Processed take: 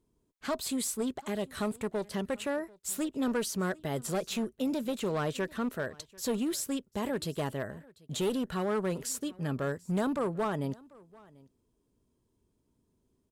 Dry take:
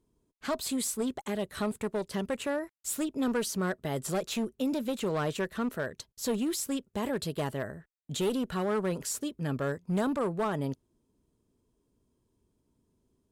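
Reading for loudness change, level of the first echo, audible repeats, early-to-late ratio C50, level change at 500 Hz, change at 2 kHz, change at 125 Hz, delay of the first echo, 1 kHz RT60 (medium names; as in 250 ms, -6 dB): -1.0 dB, -24.0 dB, 1, no reverb, -1.0 dB, -1.0 dB, -1.0 dB, 741 ms, no reverb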